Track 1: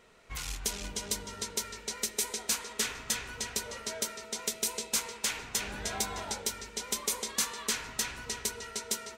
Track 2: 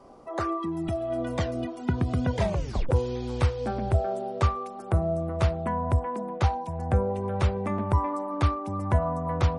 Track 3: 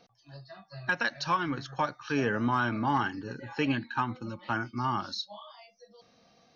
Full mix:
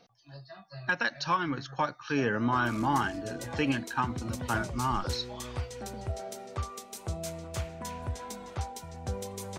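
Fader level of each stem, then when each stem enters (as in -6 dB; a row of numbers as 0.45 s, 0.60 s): -12.5 dB, -11.5 dB, 0.0 dB; 2.30 s, 2.15 s, 0.00 s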